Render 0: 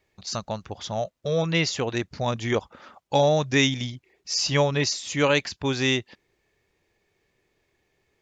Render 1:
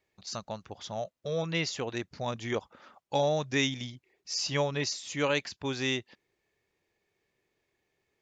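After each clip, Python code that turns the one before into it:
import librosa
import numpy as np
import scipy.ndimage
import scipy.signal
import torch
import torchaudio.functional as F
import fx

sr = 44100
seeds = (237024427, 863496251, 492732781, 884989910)

y = fx.low_shelf(x, sr, hz=73.0, db=-9.5)
y = F.gain(torch.from_numpy(y), -7.0).numpy()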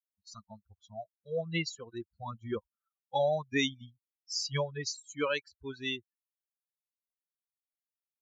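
y = fx.bin_expand(x, sr, power=3.0)
y = F.gain(torch.from_numpy(y), 2.5).numpy()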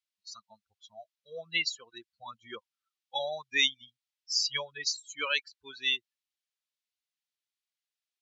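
y = fx.bandpass_q(x, sr, hz=3500.0, q=1.0)
y = F.gain(torch.from_numpy(y), 8.5).numpy()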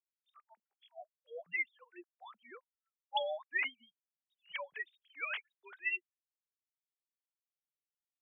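y = fx.sine_speech(x, sr)
y = F.gain(torch.from_numpy(y), -7.5).numpy()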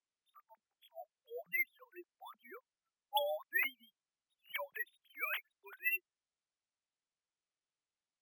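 y = np.repeat(x[::3], 3)[:len(x)]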